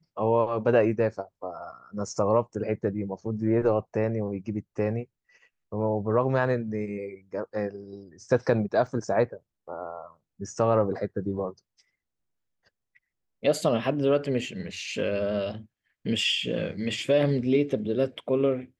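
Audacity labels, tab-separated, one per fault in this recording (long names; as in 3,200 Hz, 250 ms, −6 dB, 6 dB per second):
8.870000	8.870000	drop-out 2.1 ms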